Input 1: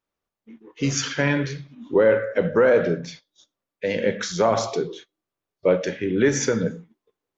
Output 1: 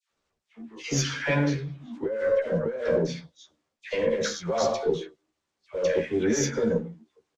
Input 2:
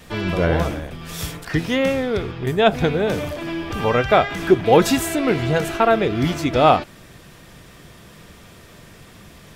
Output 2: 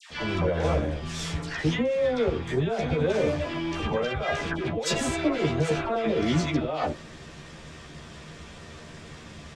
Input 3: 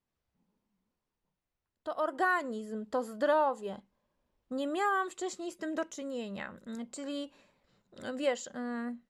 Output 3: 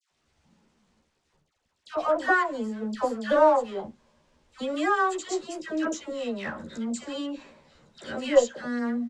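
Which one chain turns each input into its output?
G.711 law mismatch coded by mu; LPF 7800 Hz 24 dB/oct; dynamic EQ 520 Hz, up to +8 dB, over -33 dBFS, Q 2.9; negative-ratio compressor -18 dBFS, ratio -1; dispersion lows, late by 0.107 s, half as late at 1200 Hz; added harmonics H 2 -19 dB, 6 -45 dB, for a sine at -4.5 dBFS; doubler 13 ms -3.5 dB; match loudness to -27 LUFS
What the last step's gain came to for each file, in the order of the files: -8.0, -8.5, +3.0 dB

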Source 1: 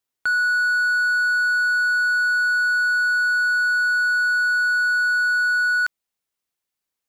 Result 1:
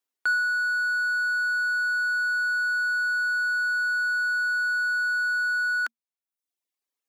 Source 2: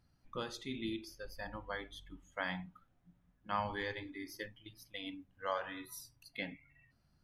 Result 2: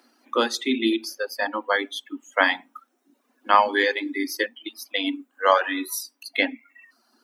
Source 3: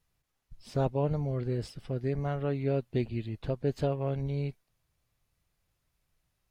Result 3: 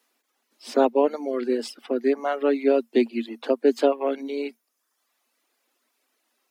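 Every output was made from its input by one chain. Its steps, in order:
reverb removal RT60 0.85 s; Chebyshev high-pass 230 Hz, order 8; match loudness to -24 LUFS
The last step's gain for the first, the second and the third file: -2.5, +20.0, +12.5 dB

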